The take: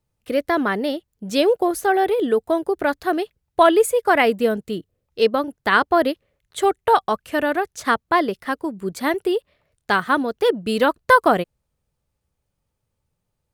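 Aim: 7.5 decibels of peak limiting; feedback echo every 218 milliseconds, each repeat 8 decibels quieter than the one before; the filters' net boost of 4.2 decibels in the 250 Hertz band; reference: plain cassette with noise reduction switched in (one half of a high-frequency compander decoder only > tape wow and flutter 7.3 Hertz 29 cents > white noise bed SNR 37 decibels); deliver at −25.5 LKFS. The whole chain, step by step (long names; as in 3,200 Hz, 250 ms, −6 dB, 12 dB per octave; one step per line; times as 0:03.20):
parametric band 250 Hz +5.5 dB
brickwall limiter −9.5 dBFS
repeating echo 218 ms, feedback 40%, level −8 dB
one half of a high-frequency compander decoder only
tape wow and flutter 7.3 Hz 29 cents
white noise bed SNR 37 dB
level −5.5 dB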